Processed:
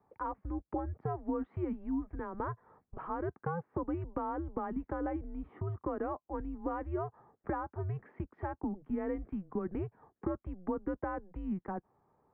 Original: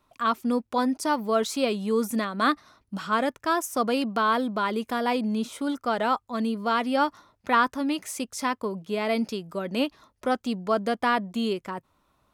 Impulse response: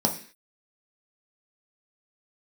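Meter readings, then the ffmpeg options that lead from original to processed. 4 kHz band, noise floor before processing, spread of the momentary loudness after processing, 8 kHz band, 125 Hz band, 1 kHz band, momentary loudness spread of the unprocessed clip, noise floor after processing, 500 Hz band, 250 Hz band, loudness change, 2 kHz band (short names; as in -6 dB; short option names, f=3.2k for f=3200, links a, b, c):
under -40 dB, -73 dBFS, 5 LU, under -40 dB, +1.0 dB, -14.5 dB, 7 LU, -85 dBFS, -11.5 dB, -10.0 dB, -12.0 dB, -20.0 dB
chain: -af "acompressor=threshold=-31dB:ratio=10,tiltshelf=f=650:g=7.5,highpass=f=340:t=q:w=0.5412,highpass=f=340:t=q:w=1.307,lowpass=f=2k:t=q:w=0.5176,lowpass=f=2k:t=q:w=0.7071,lowpass=f=2k:t=q:w=1.932,afreqshift=-180"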